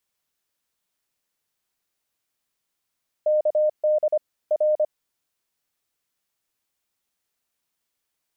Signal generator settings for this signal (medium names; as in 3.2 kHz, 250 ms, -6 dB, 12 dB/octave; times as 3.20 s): Morse "KD R" 25 wpm 610 Hz -16.5 dBFS